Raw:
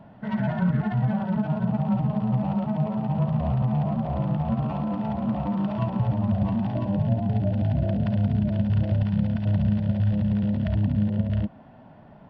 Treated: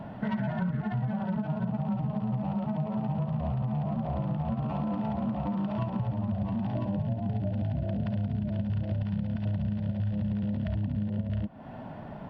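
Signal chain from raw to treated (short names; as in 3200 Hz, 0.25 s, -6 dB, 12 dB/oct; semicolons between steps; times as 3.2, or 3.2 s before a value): compressor, threshold -36 dBFS, peak gain reduction 17 dB; gain +7.5 dB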